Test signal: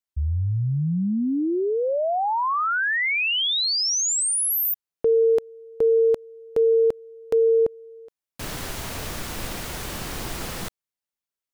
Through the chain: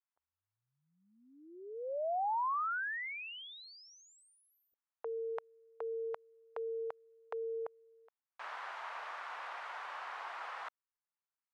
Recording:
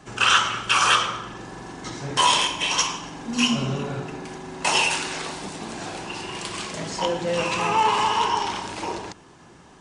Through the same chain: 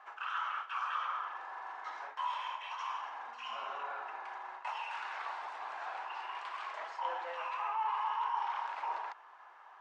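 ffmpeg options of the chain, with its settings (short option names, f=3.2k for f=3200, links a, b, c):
-af "highpass=f=900:w=0.5412,highpass=f=900:w=1.3066,areverse,acompressor=threshold=-36dB:ratio=5:attack=41:release=100:knee=6:detection=rms,areverse,lowpass=1.2k,volume=3dB"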